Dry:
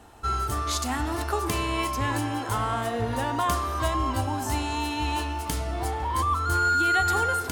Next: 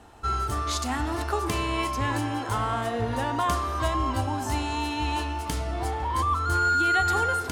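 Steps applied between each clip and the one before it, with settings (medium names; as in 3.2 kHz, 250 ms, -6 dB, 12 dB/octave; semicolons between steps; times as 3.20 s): treble shelf 12 kHz -11.5 dB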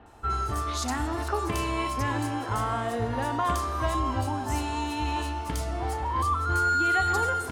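bands offset in time lows, highs 60 ms, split 3.3 kHz; trim -1 dB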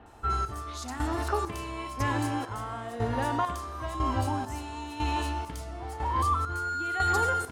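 square tremolo 1 Hz, depth 60%, duty 45%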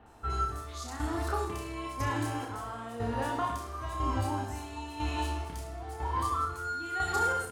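treble shelf 11 kHz +3 dB; on a send: reverse bouncing-ball echo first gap 30 ms, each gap 1.2×, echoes 5; on the sum: trim -5 dB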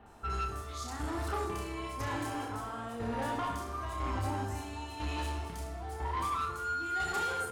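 saturation -29.5 dBFS, distortion -12 dB; on a send at -9.5 dB: reverberation RT60 1.7 s, pre-delay 5 ms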